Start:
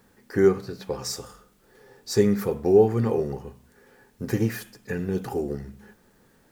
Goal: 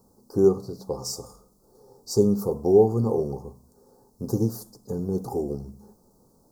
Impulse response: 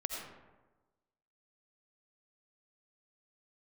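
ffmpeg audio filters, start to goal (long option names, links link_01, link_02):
-af "asuperstop=centerf=2300:order=8:qfactor=0.63"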